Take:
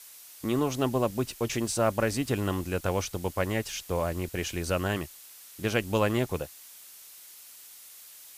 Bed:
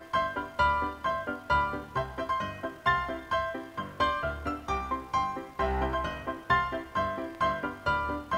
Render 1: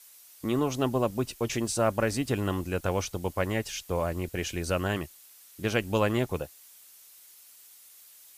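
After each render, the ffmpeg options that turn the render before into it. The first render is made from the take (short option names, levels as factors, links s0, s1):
-af "afftdn=nr=6:nf=-50"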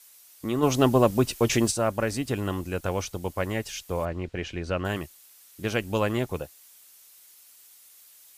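-filter_complex "[0:a]asplit=3[s0][s1][s2];[s0]afade=t=out:st=0.62:d=0.02[s3];[s1]acontrast=89,afade=t=in:st=0.62:d=0.02,afade=t=out:st=1.7:d=0.02[s4];[s2]afade=t=in:st=1.7:d=0.02[s5];[s3][s4][s5]amix=inputs=3:normalize=0,asettb=1/sr,asplit=3[s6][s7][s8];[s6]atrim=end=4.054[s9];[s7]atrim=start=4.05:end=4.85,asetpts=PTS-STARTPTS,afade=t=in:d=0.004:c=qsin,afade=t=out:st=0.796:d=0.004:c=qsin,lowpass=3600[s10];[s8]atrim=start=4.846[s11];[s9][s10]acrossfade=d=0.004:c1=hsin:c2=qsin[s12];[s12][s11]acrossfade=d=0.004:c1=qsin:c2=hsin"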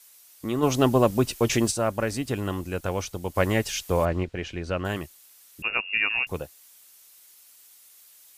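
-filter_complex "[0:a]asplit=3[s0][s1][s2];[s0]afade=t=out:st=3.34:d=0.02[s3];[s1]acontrast=49,afade=t=in:st=3.34:d=0.02,afade=t=out:st=4.23:d=0.02[s4];[s2]afade=t=in:st=4.23:d=0.02[s5];[s3][s4][s5]amix=inputs=3:normalize=0,asettb=1/sr,asplit=3[s6][s7][s8];[s6]atrim=end=5.624[s9];[s7]atrim=start=5.62:end=6.27,asetpts=PTS-STARTPTS,afade=t=in:d=0.004:c=qsin,afade=t=out:st=0.646:d=0.004:c=qsin,lowpass=f=2500:t=q:w=0.5098,lowpass=f=2500:t=q:w=0.6013,lowpass=f=2500:t=q:w=0.9,lowpass=f=2500:t=q:w=2.563,afreqshift=-2900[s10];[s8]atrim=start=6.266[s11];[s9][s10]acrossfade=d=0.004:c1=hsin:c2=qsin[s12];[s12][s11]acrossfade=d=0.004:c1=qsin:c2=hsin"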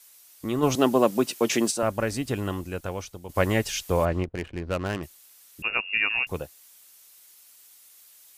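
-filter_complex "[0:a]asettb=1/sr,asplit=3[s0][s1][s2];[s0]atrim=end=0.754[s3];[s1]atrim=start=0.75:end=1.83,asetpts=PTS-STARTPTS,afade=t=in:d=0.004:c=qsin,afade=t=out:st=1.076:d=0.004:c=qsin,highpass=f=180:w=0.5412,highpass=f=180:w=1.3066[s4];[s2]atrim=start=1.826[s5];[s3][s4]acrossfade=d=0.004:c1=hsin:c2=qsin[s6];[s6][s5]acrossfade=d=0.004:c1=qsin:c2=hsin,asettb=1/sr,asplit=3[s7][s8][s9];[s7]atrim=end=4.234[s10];[s8]atrim=start=4.23:end=5.03,asetpts=PTS-STARTPTS,afade=t=in:d=0.004:c=qsin,afade=t=out:st=0.796:d=0.004:c=qsin,adynamicsmooth=sensitivity=5.5:basefreq=540[s11];[s9]atrim=start=5.026[s12];[s10][s11]acrossfade=d=0.004:c1=hsin:c2=qsin[s13];[s13][s12]acrossfade=d=0.004:c1=qsin:c2=hsin,asplit=2[s14][s15];[s14]atrim=end=3.29,asetpts=PTS-STARTPTS,afade=t=out:st=2.42:d=0.87:silence=0.334965[s16];[s15]atrim=start=3.29,asetpts=PTS-STARTPTS,afade=t=in:d=0.004:c=hsin:silence=0.334965[s17];[s16][s17]concat=n=2:v=0:a=1"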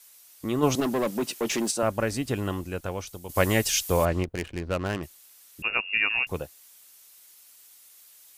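-filter_complex "[0:a]asettb=1/sr,asplit=3[s0][s1][s2];[s0]atrim=end=0.804[s3];[s1]atrim=start=0.8:end=1.7,asetpts=PTS-STARTPTS,afade=t=in:d=0.004:c=qsin,afade=t=out:st=0.896:d=0.004:c=qsin,aeval=exprs='(tanh(11.2*val(0)+0.05)-tanh(0.05))/11.2':c=same[s4];[s2]atrim=start=1.696[s5];[s3][s4]acrossfade=d=0.004:c1=hsin:c2=qsin[s6];[s6][s5]acrossfade=d=0.004:c1=qsin:c2=hsin,asettb=1/sr,asplit=3[s7][s8][s9];[s7]atrim=end=3.074[s10];[s8]atrim=start=3.07:end=4.68,asetpts=PTS-STARTPTS,afade=t=in:d=0.004:c=qsin,afade=t=out:st=1.606:d=0.004:c=qsin,highshelf=f=4400:g=10[s11];[s9]atrim=start=4.676[s12];[s10][s11]acrossfade=d=0.004:c1=hsin:c2=qsin[s13];[s13][s12]acrossfade=d=0.004:c1=qsin:c2=hsin"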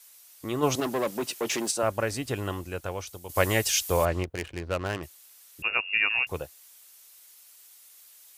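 -af "highpass=55,equalizer=f=210:t=o:w=1.1:g=-7"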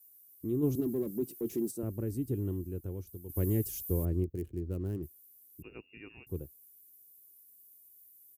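-af "firequalizer=gain_entry='entry(360,0);entry(580,-22);entry(1100,-28);entry(2600,-30);entry(6000,-23);entry(13000,-2)':delay=0.05:min_phase=1"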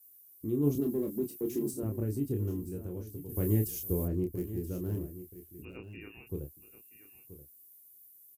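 -filter_complex "[0:a]asplit=2[s0][s1];[s1]adelay=28,volume=0.596[s2];[s0][s2]amix=inputs=2:normalize=0,aecho=1:1:979:0.2"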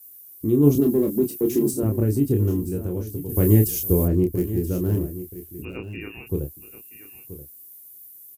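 -af "volume=3.98"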